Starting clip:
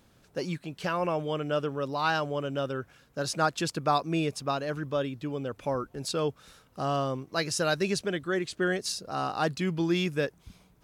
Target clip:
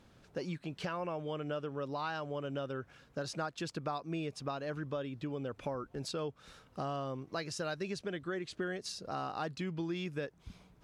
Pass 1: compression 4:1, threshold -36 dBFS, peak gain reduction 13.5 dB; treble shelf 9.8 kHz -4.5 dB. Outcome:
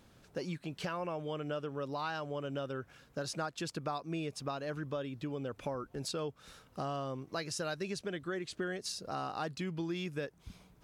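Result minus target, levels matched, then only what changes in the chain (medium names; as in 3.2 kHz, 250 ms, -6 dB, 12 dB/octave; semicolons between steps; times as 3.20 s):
8 kHz band +3.5 dB
change: treble shelf 9.8 kHz -16.5 dB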